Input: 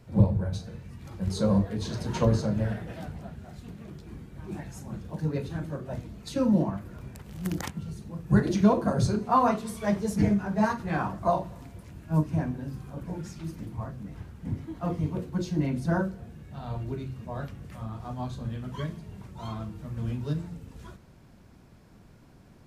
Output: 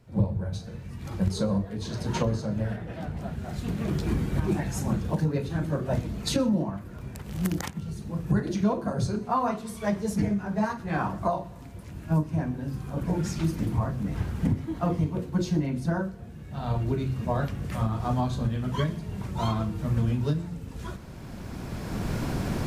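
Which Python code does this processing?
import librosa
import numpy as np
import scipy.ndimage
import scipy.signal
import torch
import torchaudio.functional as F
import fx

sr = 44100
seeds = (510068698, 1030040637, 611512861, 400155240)

y = fx.recorder_agc(x, sr, target_db=-12.5, rise_db_per_s=13.0, max_gain_db=30)
y = fx.high_shelf(y, sr, hz=4700.0, db=-8.5, at=(2.76, 3.17))
y = y + 10.0 ** (-24.0 / 20.0) * np.pad(y, (int(123 * sr / 1000.0), 0))[:len(y)]
y = y * librosa.db_to_amplitude(-4.5)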